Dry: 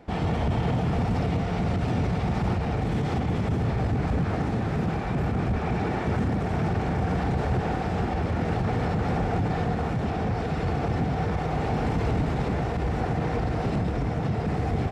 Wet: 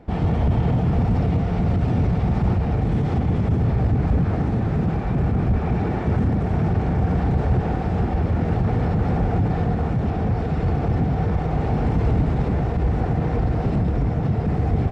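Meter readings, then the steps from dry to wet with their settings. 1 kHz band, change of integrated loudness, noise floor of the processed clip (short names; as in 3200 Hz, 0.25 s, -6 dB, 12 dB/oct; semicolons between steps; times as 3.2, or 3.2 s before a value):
+0.5 dB, +5.0 dB, -24 dBFS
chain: tilt -2 dB/oct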